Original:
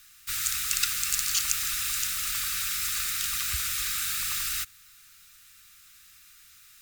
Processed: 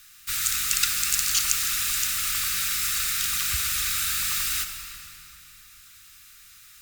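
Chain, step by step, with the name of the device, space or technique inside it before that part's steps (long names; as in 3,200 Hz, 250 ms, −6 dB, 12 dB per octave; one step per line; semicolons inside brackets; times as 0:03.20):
saturated reverb return (on a send at −4.5 dB: convolution reverb RT60 3.0 s, pre-delay 38 ms + soft clipping −27 dBFS, distortion −14 dB)
on the sum: level +3 dB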